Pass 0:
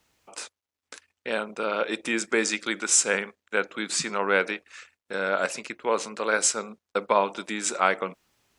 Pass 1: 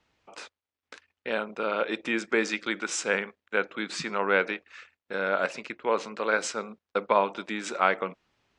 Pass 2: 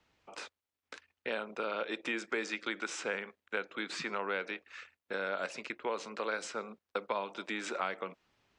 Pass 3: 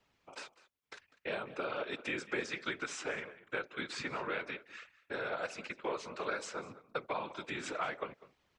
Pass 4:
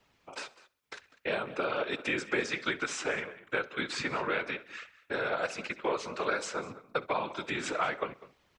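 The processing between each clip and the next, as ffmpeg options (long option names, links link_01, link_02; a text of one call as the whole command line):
ffmpeg -i in.wav -af "lowpass=3900,volume=-1dB" out.wav
ffmpeg -i in.wav -filter_complex "[0:a]acrossover=split=260|3600[link_01][link_02][link_03];[link_01]acompressor=threshold=-53dB:ratio=4[link_04];[link_02]acompressor=threshold=-32dB:ratio=4[link_05];[link_03]acompressor=threshold=-45dB:ratio=4[link_06];[link_04][link_05][link_06]amix=inputs=3:normalize=0,volume=-1.5dB" out.wav
ffmpeg -i in.wav -filter_complex "[0:a]asplit=2[link_01][link_02];[link_02]adelay=198.3,volume=-17dB,highshelf=frequency=4000:gain=-4.46[link_03];[link_01][link_03]amix=inputs=2:normalize=0,afftfilt=real='hypot(re,im)*cos(2*PI*random(0))':imag='hypot(re,im)*sin(2*PI*random(1))':win_size=512:overlap=0.75,volume=4dB" out.wav
ffmpeg -i in.wav -af "aecho=1:1:65|130|195:0.0891|0.0401|0.018,volume=6dB" out.wav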